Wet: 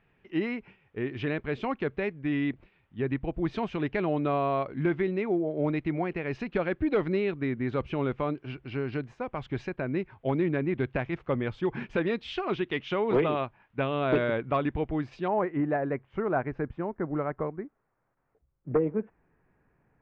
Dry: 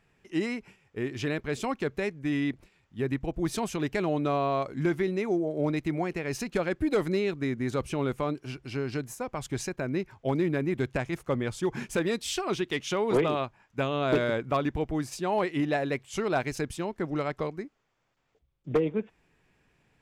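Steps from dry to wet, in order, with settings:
low-pass filter 3,200 Hz 24 dB per octave, from 0:15.28 1,700 Hz

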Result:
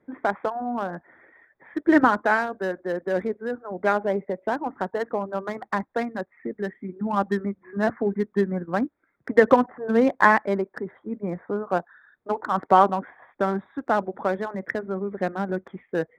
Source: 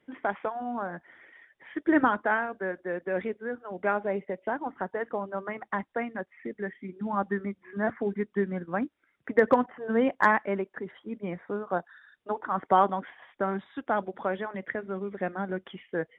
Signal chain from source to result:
adaptive Wiener filter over 15 samples
level +5.5 dB

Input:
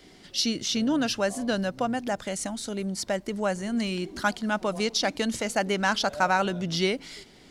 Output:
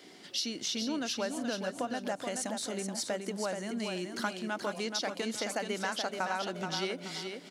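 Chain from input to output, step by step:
downward compressor 4 to 1, threshold −32 dBFS, peak gain reduction 12 dB
high-pass filter 230 Hz 12 dB per octave
repeating echo 427 ms, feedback 32%, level −6 dB

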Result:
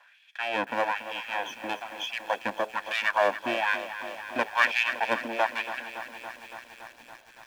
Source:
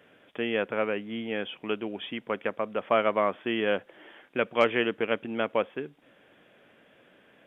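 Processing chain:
lower of the sound and its delayed copy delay 1.2 ms
auto-filter high-pass sine 1.1 Hz 260–2,700 Hz
feedback echo at a low word length 282 ms, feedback 80%, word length 8 bits, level −12 dB

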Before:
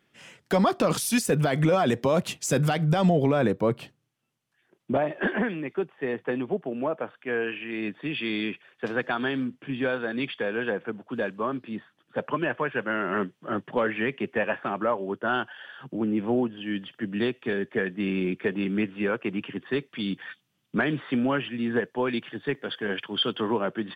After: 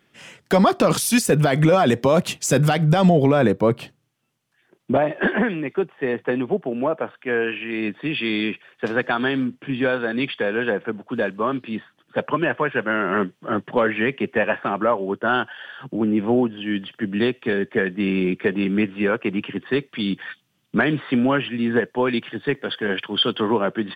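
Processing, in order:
0:11.46–0:12.22: dynamic equaliser 3,000 Hz, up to +6 dB, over −52 dBFS, Q 1.2
level +6 dB

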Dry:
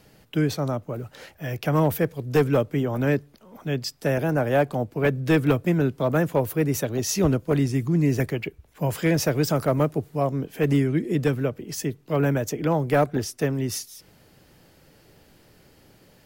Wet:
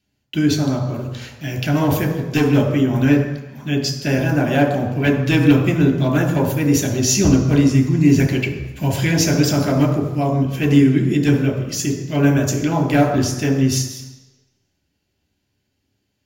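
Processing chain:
0:08.07–0:08.88: mu-law and A-law mismatch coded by mu
noise gate −48 dBFS, range −24 dB
convolution reverb RT60 1.0 s, pre-delay 3 ms, DRR 1.5 dB
level +2 dB

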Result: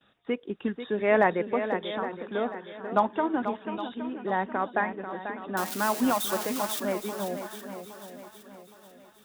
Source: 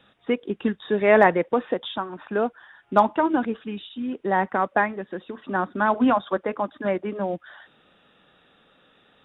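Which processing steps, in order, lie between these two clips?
0:05.57–0:06.80: spike at every zero crossing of −16 dBFS
noise gate with hold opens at −49 dBFS
feedback echo with a long and a short gap by turns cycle 816 ms, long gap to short 1.5 to 1, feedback 37%, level −9.5 dB
level −6 dB

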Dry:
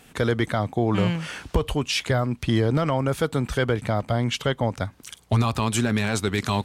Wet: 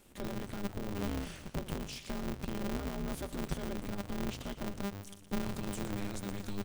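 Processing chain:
one-sided soft clipper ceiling −10.5 dBFS
high-pass filter 68 Hz 12 dB per octave
high-shelf EQ 7,700 Hz +5 dB
notch filter 400 Hz, Q 12
brickwall limiter −22 dBFS, peak gain reduction 11.5 dB
guitar amp tone stack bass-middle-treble 10-0-1
tuned comb filter 100 Hz, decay 1.5 s, harmonics odd, mix 50%
hollow resonant body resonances 500/770/1,300 Hz, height 10 dB
echo with shifted repeats 118 ms, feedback 42%, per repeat −97 Hz, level −11 dB
ring modulator with a square carrier 100 Hz
level +14 dB

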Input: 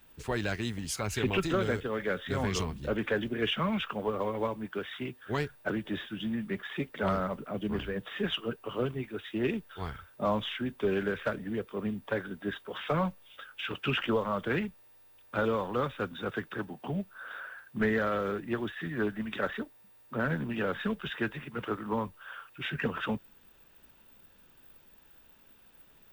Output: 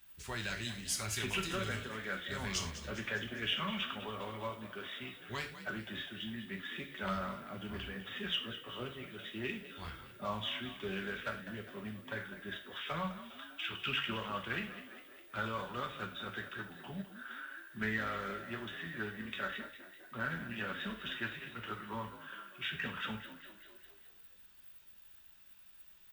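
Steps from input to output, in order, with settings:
guitar amp tone stack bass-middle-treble 5-5-5
echo with shifted repeats 202 ms, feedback 57%, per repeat +46 Hz, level −12.5 dB
reverb whose tail is shaped and stops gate 140 ms falling, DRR 2.5 dB
level +5 dB

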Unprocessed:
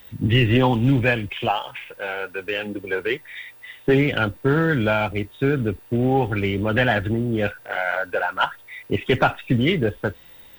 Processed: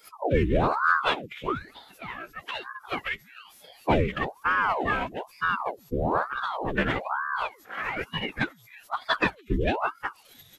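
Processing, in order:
spectral dynamics exaggerated over time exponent 1.5
phase-vocoder pitch shift with formants kept −8.5 semitones
ring modulator whose carrier an LFO sweeps 750 Hz, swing 85%, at 1.1 Hz

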